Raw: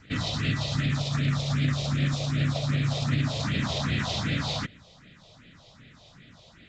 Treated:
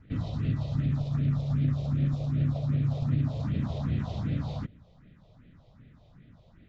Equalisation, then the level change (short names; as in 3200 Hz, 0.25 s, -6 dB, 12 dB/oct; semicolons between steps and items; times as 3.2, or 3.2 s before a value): tilt -2.5 dB/oct; dynamic EQ 1800 Hz, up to -5 dB, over -49 dBFS, Q 1.3; high shelf 2600 Hz -10 dB; -7.5 dB